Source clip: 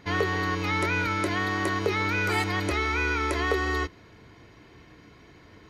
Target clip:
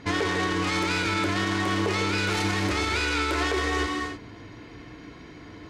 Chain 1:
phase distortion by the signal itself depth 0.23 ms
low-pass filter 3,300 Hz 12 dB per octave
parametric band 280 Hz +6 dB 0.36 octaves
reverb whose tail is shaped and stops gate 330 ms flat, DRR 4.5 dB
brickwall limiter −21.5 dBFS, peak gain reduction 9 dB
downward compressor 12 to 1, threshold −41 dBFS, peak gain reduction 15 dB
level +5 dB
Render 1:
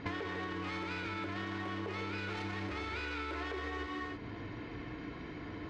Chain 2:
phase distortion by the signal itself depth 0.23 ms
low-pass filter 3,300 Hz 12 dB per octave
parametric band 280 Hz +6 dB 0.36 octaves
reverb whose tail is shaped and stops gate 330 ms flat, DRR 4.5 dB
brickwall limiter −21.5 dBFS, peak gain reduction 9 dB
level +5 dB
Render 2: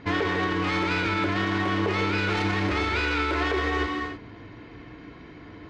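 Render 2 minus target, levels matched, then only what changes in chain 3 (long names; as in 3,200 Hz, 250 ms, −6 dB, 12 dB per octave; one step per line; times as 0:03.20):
8,000 Hz band −11.5 dB
change: low-pass filter 10,000 Hz 12 dB per octave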